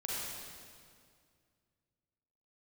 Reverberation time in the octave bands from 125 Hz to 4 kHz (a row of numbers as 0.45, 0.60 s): 2.9, 2.5, 2.2, 2.0, 1.9, 1.8 s